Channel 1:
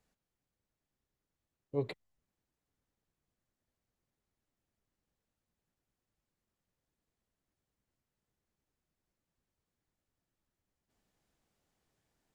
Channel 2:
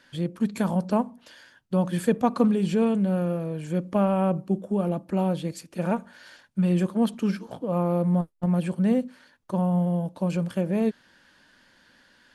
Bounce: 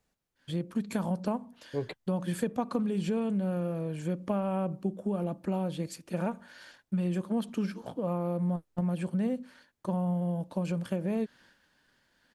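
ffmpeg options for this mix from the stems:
-filter_complex "[0:a]volume=2.5dB[a];[1:a]agate=range=-33dB:threshold=-51dB:ratio=3:detection=peak,adelay=350,volume=-2.5dB[b];[a][b]amix=inputs=2:normalize=0,acompressor=threshold=-27dB:ratio=4"

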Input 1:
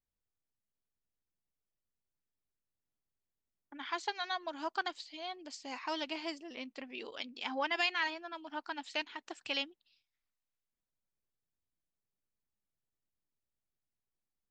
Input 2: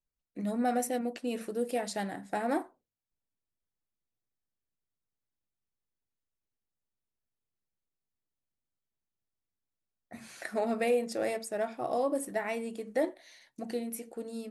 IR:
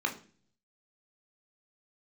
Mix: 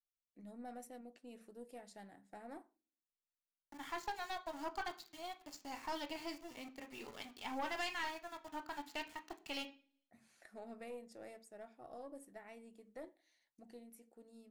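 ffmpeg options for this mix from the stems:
-filter_complex "[0:a]aeval=exprs='val(0)*gte(abs(val(0)),0.00447)':c=same,volume=-2dB,asplit=2[a][b];[b]volume=-11dB[c];[1:a]volume=-18.5dB,asplit=2[d][e];[e]volume=-23.5dB[f];[2:a]atrim=start_sample=2205[g];[c][f]amix=inputs=2:normalize=0[h];[h][g]afir=irnorm=-1:irlink=0[i];[a][d][i]amix=inputs=3:normalize=0,aeval=exprs='(tanh(50.1*val(0)+0.5)-tanh(0.5))/50.1':c=same"

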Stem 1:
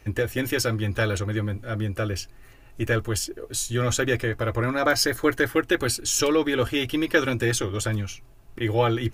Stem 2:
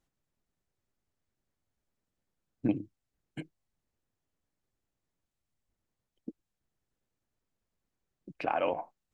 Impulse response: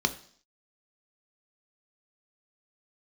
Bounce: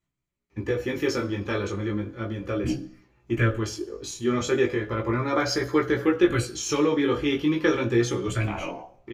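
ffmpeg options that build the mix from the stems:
-filter_complex "[0:a]agate=range=-8dB:threshold=-37dB:ratio=16:detection=peak,highshelf=f=3.7k:g=-8.5,adelay=500,volume=0.5dB,asplit=2[a][b];[b]volume=-7.5dB[c];[1:a]volume=-2dB,asplit=3[d][e][f];[e]volume=-5dB[g];[f]apad=whole_len=424758[h];[a][h]sidechaingate=range=-33dB:threshold=-60dB:ratio=16:detection=peak[i];[2:a]atrim=start_sample=2205[j];[c][g]amix=inputs=2:normalize=0[k];[k][j]afir=irnorm=-1:irlink=0[l];[i][d][l]amix=inputs=3:normalize=0,flanger=delay=15.5:depth=5.5:speed=0.35"

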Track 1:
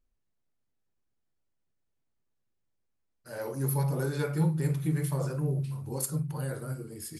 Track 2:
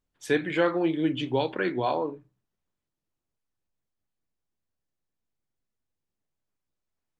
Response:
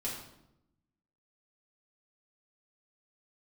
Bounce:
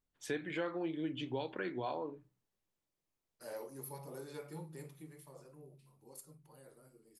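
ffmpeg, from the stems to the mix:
-filter_complex "[0:a]highpass=270,equalizer=f=1.5k:t=o:w=0.34:g=-7,adelay=150,volume=-1.5dB,afade=t=out:st=3.36:d=0.34:silence=0.281838,afade=t=out:st=4.77:d=0.38:silence=0.446684[a];[1:a]volume=-6dB[b];[a][b]amix=inputs=2:normalize=0,acompressor=threshold=-40dB:ratio=2"

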